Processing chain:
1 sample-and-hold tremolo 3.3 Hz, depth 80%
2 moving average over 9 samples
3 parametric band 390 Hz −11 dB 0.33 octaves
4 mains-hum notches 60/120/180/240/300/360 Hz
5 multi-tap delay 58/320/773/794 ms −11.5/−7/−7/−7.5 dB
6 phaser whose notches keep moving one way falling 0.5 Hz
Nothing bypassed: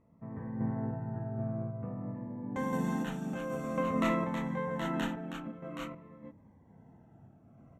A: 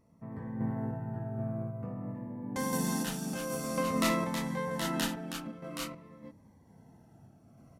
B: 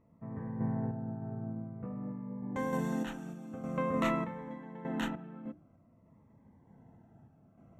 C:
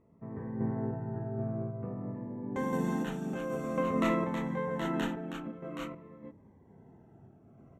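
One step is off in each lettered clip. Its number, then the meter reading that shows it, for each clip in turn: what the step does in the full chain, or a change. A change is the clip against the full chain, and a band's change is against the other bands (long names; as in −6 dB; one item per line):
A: 2, 8 kHz band +15.5 dB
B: 5, change in integrated loudness −1.5 LU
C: 3, 500 Hz band +2.0 dB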